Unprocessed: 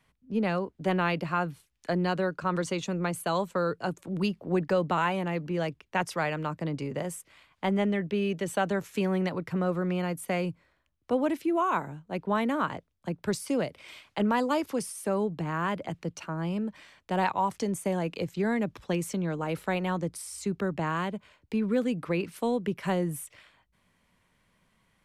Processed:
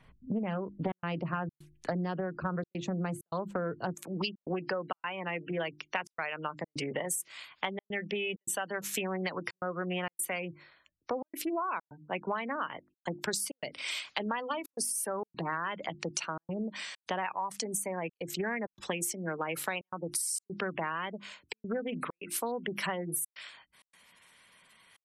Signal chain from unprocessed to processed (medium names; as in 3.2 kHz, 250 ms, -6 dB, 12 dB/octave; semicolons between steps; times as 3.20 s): spectral gate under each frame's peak -25 dB strong; hum notches 50/100/150/200/250/300/350 Hz; tilt EQ -1.5 dB/octave, from 3.93 s +4 dB/octave; compression 12:1, threshold -37 dBFS, peak gain reduction 17.5 dB; trance gate "xxxxxxxx.xxxx.x" 131 bpm -60 dB; loudspeaker Doppler distortion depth 0.26 ms; trim +7 dB